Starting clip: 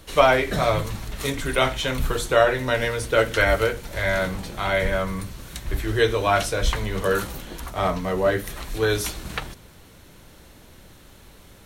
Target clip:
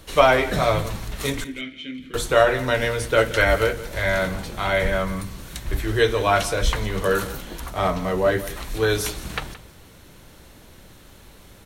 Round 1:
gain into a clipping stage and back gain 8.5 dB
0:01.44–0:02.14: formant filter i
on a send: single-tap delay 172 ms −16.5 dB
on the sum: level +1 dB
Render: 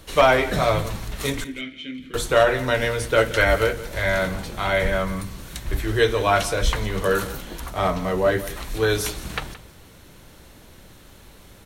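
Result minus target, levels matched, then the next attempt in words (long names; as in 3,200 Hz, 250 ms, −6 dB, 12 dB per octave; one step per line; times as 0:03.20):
gain into a clipping stage and back: distortion +35 dB
gain into a clipping stage and back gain 2 dB
0:01.44–0:02.14: formant filter i
on a send: single-tap delay 172 ms −16.5 dB
on the sum: level +1 dB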